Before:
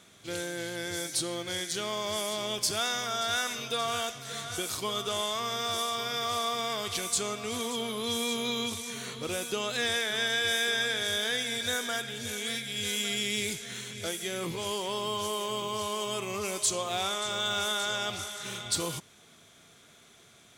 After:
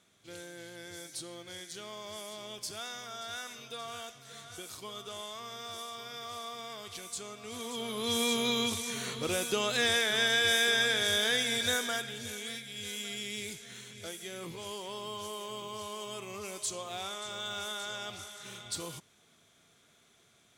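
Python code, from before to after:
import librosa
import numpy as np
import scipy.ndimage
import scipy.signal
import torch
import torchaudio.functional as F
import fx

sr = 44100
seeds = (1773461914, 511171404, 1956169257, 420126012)

y = fx.gain(x, sr, db=fx.line((7.34, -11.0), (8.21, 1.5), (11.64, 1.5), (12.65, -8.0)))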